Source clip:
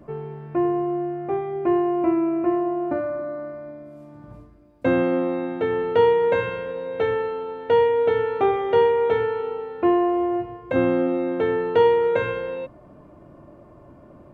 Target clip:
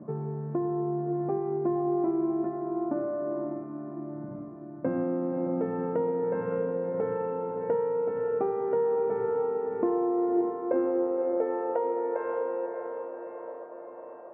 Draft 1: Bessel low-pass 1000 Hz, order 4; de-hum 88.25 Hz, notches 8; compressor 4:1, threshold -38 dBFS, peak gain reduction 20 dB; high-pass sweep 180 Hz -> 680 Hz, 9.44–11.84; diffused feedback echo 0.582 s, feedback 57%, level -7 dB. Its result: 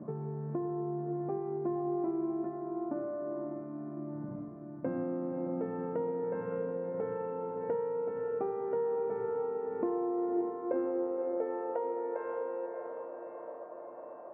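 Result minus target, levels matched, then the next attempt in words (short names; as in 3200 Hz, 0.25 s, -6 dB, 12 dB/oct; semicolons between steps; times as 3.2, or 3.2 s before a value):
compressor: peak gain reduction +6 dB
Bessel low-pass 1000 Hz, order 4; de-hum 88.25 Hz, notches 8; compressor 4:1, threshold -30 dBFS, peak gain reduction 14 dB; high-pass sweep 180 Hz -> 680 Hz, 9.44–11.84; diffused feedback echo 0.582 s, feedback 57%, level -7 dB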